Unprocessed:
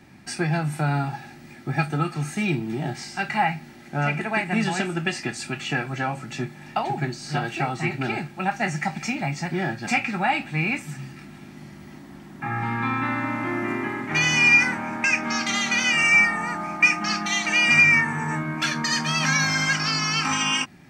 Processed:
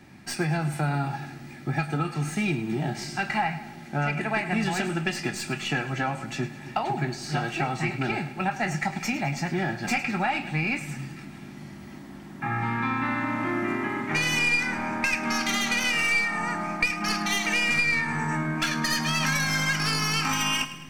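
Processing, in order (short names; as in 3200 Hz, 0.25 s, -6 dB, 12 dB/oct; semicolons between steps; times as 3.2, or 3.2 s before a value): tracing distortion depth 0.048 ms; compressor 5:1, threshold -22 dBFS, peak gain reduction 10 dB; split-band echo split 420 Hz, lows 0.269 s, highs 0.105 s, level -14 dB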